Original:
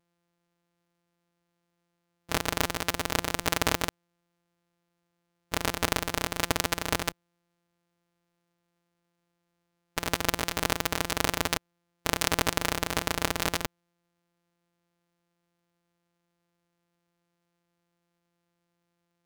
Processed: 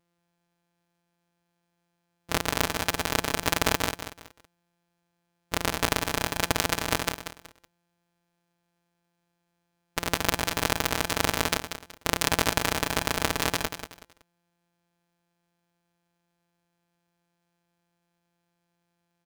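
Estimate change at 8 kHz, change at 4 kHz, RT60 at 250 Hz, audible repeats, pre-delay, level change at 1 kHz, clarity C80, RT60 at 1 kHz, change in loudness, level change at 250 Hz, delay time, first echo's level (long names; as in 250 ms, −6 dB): +2.0 dB, +2.0 dB, no reverb audible, 3, no reverb audible, +2.0 dB, no reverb audible, no reverb audible, +2.0 dB, +2.0 dB, 187 ms, −9.5 dB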